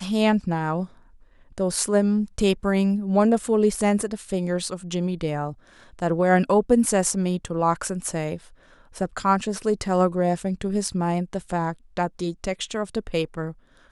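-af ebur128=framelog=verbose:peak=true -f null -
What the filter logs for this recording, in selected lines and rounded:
Integrated loudness:
  I:         -23.8 LUFS
  Threshold: -34.2 LUFS
Loudness range:
  LRA:         3.3 LU
  Threshold: -43.9 LUFS
  LRA low:   -25.6 LUFS
  LRA high:  -22.3 LUFS
True peak:
  Peak:       -6.4 dBFS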